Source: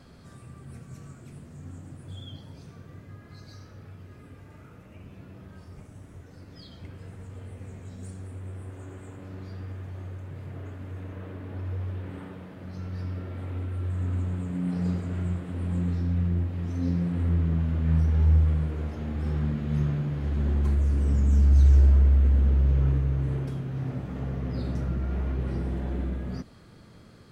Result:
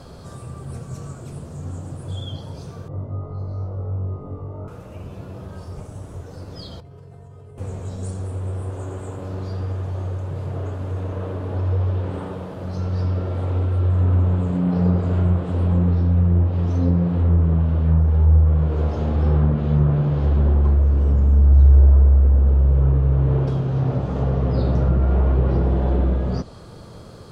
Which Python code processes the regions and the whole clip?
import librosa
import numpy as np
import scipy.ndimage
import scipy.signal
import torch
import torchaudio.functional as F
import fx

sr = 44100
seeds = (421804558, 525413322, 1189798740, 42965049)

y = fx.chain(x, sr, fx.savgol(points=65),
    fx.room_flutter(wall_m=3.6, rt60_s=0.41), at=(2.88, 4.68))
y = fx.chain(y, sr, fx.high_shelf(hz=2100.0, db=-8.0),
    fx.comb_fb(f0_hz=140.0, decay_s=0.4, harmonics='odd', damping=0.0, mix_pct=90),
    fx.env_flatten(amount_pct=100), at=(6.8, 7.58))
y = fx.rider(y, sr, range_db=3, speed_s=0.5)
y = fx.env_lowpass_down(y, sr, base_hz=1900.0, full_db=-19.5)
y = fx.graphic_eq_10(y, sr, hz=(250, 500, 1000, 2000), db=(-6, 4, 3, -10))
y = y * librosa.db_to_amplitude(9.0)